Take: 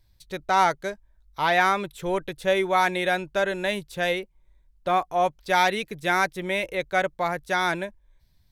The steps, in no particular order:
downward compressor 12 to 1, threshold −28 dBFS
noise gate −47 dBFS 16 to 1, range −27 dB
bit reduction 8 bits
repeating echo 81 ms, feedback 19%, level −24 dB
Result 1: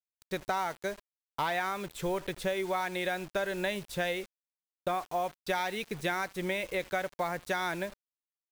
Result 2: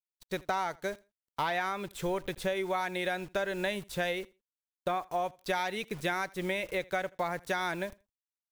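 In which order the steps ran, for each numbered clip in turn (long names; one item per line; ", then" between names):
downward compressor, then repeating echo, then noise gate, then bit reduction
bit reduction, then noise gate, then downward compressor, then repeating echo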